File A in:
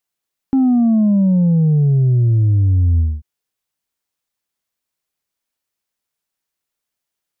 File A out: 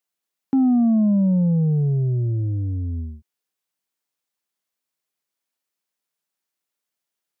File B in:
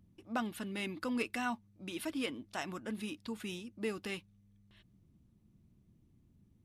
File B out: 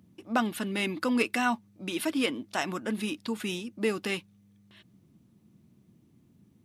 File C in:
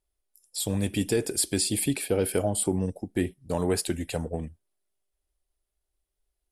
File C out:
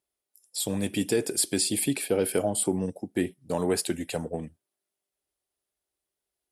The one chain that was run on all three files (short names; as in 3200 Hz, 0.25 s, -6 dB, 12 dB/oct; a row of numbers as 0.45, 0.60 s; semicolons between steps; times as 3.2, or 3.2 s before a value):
HPF 150 Hz 12 dB/oct; normalise peaks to -12 dBFS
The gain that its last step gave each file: -3.0, +9.5, +0.5 dB